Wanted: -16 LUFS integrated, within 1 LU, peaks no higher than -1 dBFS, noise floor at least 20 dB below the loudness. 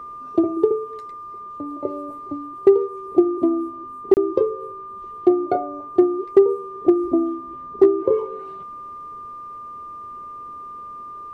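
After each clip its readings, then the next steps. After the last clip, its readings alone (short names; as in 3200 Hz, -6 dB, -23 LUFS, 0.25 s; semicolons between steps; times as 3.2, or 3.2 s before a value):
dropouts 1; longest dropout 29 ms; steady tone 1200 Hz; tone level -33 dBFS; loudness -20.5 LUFS; peak -4.0 dBFS; loudness target -16.0 LUFS
-> interpolate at 4.14, 29 ms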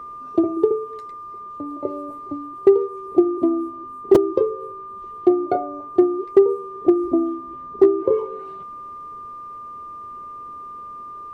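dropouts 0; steady tone 1200 Hz; tone level -33 dBFS
-> notch 1200 Hz, Q 30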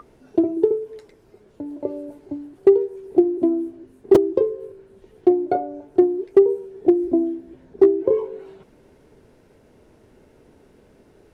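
steady tone none; loudness -20.0 LUFS; peak -2.5 dBFS; loudness target -16.0 LUFS
-> gain +4 dB; limiter -1 dBFS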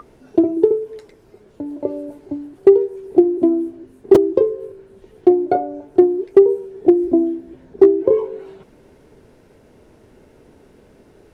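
loudness -16.5 LUFS; peak -1.0 dBFS; noise floor -51 dBFS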